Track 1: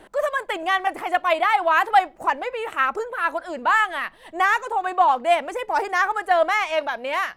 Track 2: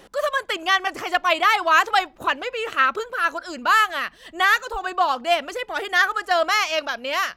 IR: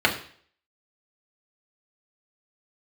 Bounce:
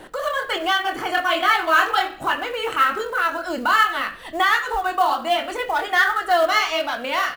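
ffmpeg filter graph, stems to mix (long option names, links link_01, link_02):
-filter_complex "[0:a]acompressor=threshold=-28dB:ratio=10,volume=1dB[link_01];[1:a]lowshelf=frequency=190:gain=6.5,flanger=delay=19.5:depth=6.3:speed=1.3,adelay=0.5,volume=-8.5dB,asplit=2[link_02][link_03];[link_03]volume=-13.5dB[link_04];[2:a]atrim=start_sample=2205[link_05];[link_04][link_05]afir=irnorm=-1:irlink=0[link_06];[link_01][link_02][link_06]amix=inputs=3:normalize=0,acontrast=29,acrusher=bits=6:mode=log:mix=0:aa=0.000001"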